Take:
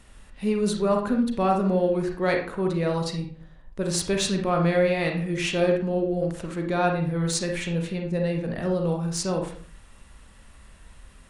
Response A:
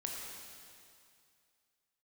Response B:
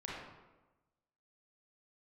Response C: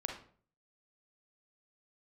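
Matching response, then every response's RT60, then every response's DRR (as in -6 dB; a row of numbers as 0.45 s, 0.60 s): C; 2.4 s, 1.1 s, 0.50 s; -1.5 dB, -6.0 dB, 2.0 dB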